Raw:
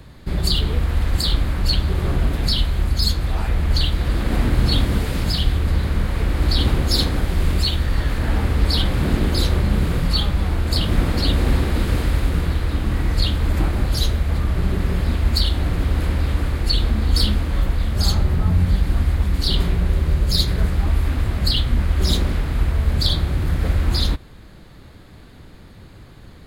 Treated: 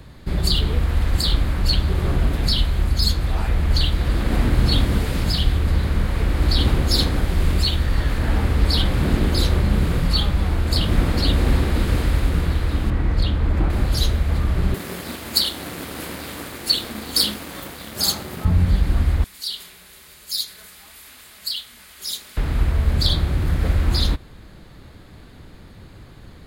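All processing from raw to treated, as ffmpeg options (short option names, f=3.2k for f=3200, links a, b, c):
-filter_complex "[0:a]asettb=1/sr,asplit=3[a][b][c];[a]atrim=end=12.904[d];[b]atrim=start=12.9:end=13.7,asetpts=PTS-STARTPTS,afade=t=in:d=0.004:c=qsin,afade=t=out:st=0.796:d=0.004:c=qsin,lowpass=f=2k:p=1,volume=10.5dB,asoftclip=hard,volume=-10.5dB[e];[c]atrim=start=13.696[f];[d][e]acrossfade=d=0.004:c1=hsin:c2=qsin[g];[g][f]acrossfade=d=0.004:c1=qsin:c2=hsin,asettb=1/sr,asplit=3[h][i][j];[h]atrim=end=14.744[k];[i]atrim=start=14.74:end=18.45,asetpts=PTS-STARTPTS,afade=t=in:d=0.004:c=qsin,afade=t=out:st=3.706:d=0.004:c=qsin,highpass=230,aemphasis=mode=production:type=50kf,aeval=exprs='sgn(val(0))*max(abs(val(0))-0.0119,0)':c=same[l];[j]atrim=start=18.446[m];[k][l]acrossfade=d=0.004:c1=hsin:c2=qsin[n];[n][m]acrossfade=d=0.004:c1=qsin:c2=hsin,asettb=1/sr,asplit=3[o][p][q];[o]atrim=end=19.244[r];[p]atrim=start=19.24:end=22.37,asetpts=PTS-STARTPTS,afade=t=in:d=0.004:c=qsin,afade=t=out:st=3.126:d=0.004:c=qsin,aderivative,aecho=1:1:4.7:0.31,atrim=end_sample=138033[s];[q]atrim=start=22.366[t];[r][s]acrossfade=d=0.004:c1=hsin:c2=qsin[u];[u][t]acrossfade=d=0.004:c1=qsin:c2=hsin"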